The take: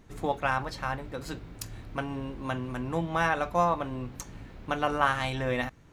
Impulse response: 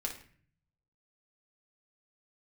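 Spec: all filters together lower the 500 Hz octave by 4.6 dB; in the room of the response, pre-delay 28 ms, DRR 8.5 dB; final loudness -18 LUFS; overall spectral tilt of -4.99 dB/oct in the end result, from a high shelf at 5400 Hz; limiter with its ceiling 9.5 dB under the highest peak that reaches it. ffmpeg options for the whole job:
-filter_complex "[0:a]equalizer=f=500:t=o:g=-6,highshelf=f=5.4k:g=4.5,alimiter=limit=-20dB:level=0:latency=1,asplit=2[a][b];[1:a]atrim=start_sample=2205,adelay=28[c];[b][c]afir=irnorm=-1:irlink=0,volume=-10dB[d];[a][d]amix=inputs=2:normalize=0,volume=16dB"

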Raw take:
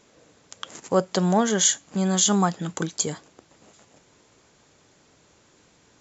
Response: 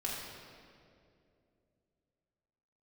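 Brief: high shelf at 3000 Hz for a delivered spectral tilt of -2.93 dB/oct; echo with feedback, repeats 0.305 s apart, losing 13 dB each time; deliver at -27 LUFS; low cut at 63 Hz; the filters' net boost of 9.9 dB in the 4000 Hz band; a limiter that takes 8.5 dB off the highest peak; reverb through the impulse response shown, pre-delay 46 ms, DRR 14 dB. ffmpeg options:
-filter_complex "[0:a]highpass=63,highshelf=f=3k:g=4.5,equalizer=f=4k:t=o:g=9,alimiter=limit=-7dB:level=0:latency=1,aecho=1:1:305|610|915:0.224|0.0493|0.0108,asplit=2[a][b];[1:a]atrim=start_sample=2205,adelay=46[c];[b][c]afir=irnorm=-1:irlink=0,volume=-17.5dB[d];[a][d]amix=inputs=2:normalize=0,volume=-6dB"

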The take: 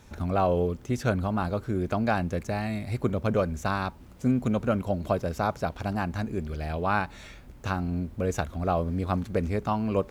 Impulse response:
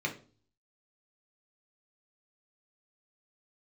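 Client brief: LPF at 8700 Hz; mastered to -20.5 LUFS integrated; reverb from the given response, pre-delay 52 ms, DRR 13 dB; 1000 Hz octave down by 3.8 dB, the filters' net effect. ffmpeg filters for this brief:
-filter_complex "[0:a]lowpass=8.7k,equalizer=f=1k:t=o:g=-5.5,asplit=2[a][b];[1:a]atrim=start_sample=2205,adelay=52[c];[b][c]afir=irnorm=-1:irlink=0,volume=-19dB[d];[a][d]amix=inputs=2:normalize=0,volume=9dB"

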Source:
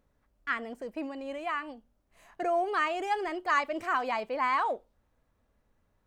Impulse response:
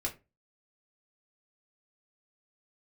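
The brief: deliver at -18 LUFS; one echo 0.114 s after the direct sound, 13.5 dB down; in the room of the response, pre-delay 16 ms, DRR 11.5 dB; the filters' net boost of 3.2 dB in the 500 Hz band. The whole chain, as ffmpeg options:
-filter_complex "[0:a]equalizer=f=500:t=o:g=4.5,aecho=1:1:114:0.211,asplit=2[a][b];[1:a]atrim=start_sample=2205,adelay=16[c];[b][c]afir=irnorm=-1:irlink=0,volume=-14.5dB[d];[a][d]amix=inputs=2:normalize=0,volume=11dB"

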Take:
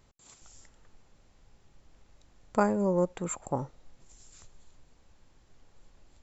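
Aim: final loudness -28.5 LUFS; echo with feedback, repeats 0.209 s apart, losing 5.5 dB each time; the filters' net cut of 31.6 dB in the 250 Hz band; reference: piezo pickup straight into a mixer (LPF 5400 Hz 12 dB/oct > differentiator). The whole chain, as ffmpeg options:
-af "lowpass=5.4k,aderivative,equalizer=f=250:t=o:g=-3,aecho=1:1:209|418|627|836|1045|1254|1463:0.531|0.281|0.149|0.079|0.0419|0.0222|0.0118,volume=22dB"

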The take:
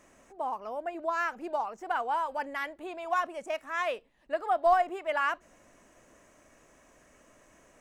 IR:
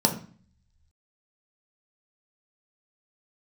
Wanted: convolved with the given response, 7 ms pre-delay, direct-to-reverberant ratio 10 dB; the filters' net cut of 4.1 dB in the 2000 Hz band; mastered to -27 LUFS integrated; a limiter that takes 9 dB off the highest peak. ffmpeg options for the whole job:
-filter_complex "[0:a]equalizer=f=2k:t=o:g=-5.5,alimiter=limit=-23.5dB:level=0:latency=1,asplit=2[a][b];[1:a]atrim=start_sample=2205,adelay=7[c];[b][c]afir=irnorm=-1:irlink=0,volume=-23dB[d];[a][d]amix=inputs=2:normalize=0,volume=7dB"

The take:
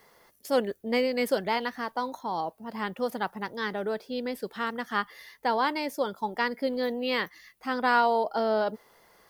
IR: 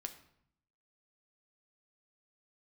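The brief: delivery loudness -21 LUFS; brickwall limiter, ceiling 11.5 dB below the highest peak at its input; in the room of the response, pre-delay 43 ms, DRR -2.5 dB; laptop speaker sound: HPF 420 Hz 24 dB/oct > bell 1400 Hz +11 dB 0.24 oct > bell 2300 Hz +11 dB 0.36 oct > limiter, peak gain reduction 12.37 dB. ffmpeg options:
-filter_complex "[0:a]alimiter=limit=-22.5dB:level=0:latency=1,asplit=2[a][b];[1:a]atrim=start_sample=2205,adelay=43[c];[b][c]afir=irnorm=-1:irlink=0,volume=5.5dB[d];[a][d]amix=inputs=2:normalize=0,highpass=f=420:w=0.5412,highpass=f=420:w=1.3066,equalizer=f=1.4k:t=o:w=0.24:g=11,equalizer=f=2.3k:t=o:w=0.36:g=11,volume=10.5dB,alimiter=limit=-12dB:level=0:latency=1"

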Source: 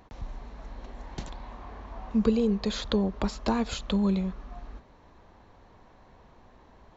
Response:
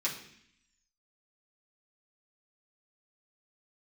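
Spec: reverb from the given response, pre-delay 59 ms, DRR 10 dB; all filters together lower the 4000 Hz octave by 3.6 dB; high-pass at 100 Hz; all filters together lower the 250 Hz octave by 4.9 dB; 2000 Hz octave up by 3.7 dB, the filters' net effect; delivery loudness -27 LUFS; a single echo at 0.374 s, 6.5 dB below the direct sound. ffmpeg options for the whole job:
-filter_complex "[0:a]highpass=100,equalizer=f=250:t=o:g=-6,equalizer=f=2k:t=o:g=6.5,equalizer=f=4k:t=o:g=-6.5,aecho=1:1:374:0.473,asplit=2[a][b];[1:a]atrim=start_sample=2205,adelay=59[c];[b][c]afir=irnorm=-1:irlink=0,volume=-15.5dB[d];[a][d]amix=inputs=2:normalize=0,volume=4dB"

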